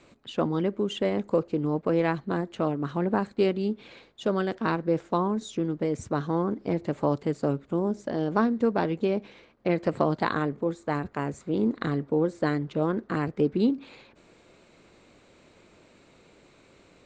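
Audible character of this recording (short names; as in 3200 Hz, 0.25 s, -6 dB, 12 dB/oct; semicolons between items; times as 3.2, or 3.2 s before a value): noise floor -58 dBFS; spectral tilt -6.5 dB/oct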